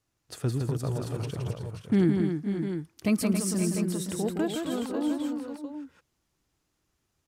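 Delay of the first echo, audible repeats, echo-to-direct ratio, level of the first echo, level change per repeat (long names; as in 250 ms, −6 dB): 166 ms, 4, −1.0 dB, −5.0 dB, repeats not evenly spaced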